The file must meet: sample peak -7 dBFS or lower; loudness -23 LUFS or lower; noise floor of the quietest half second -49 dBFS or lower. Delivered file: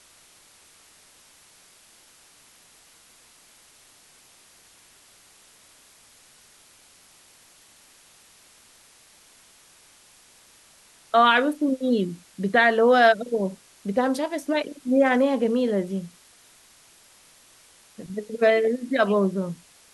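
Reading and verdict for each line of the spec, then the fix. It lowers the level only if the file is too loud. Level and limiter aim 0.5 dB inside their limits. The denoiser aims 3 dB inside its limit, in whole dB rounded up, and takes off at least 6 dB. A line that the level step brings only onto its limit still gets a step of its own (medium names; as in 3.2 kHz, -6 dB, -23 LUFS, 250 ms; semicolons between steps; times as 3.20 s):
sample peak -6.5 dBFS: fail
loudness -22.5 LUFS: fail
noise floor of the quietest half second -55 dBFS: pass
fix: trim -1 dB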